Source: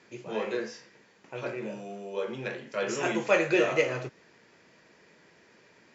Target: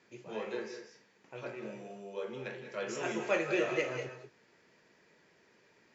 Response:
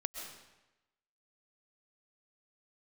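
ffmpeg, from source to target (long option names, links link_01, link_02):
-filter_complex "[1:a]atrim=start_sample=2205,atrim=end_sample=6174,asetrate=29988,aresample=44100[link_01];[0:a][link_01]afir=irnorm=-1:irlink=0,volume=-8dB"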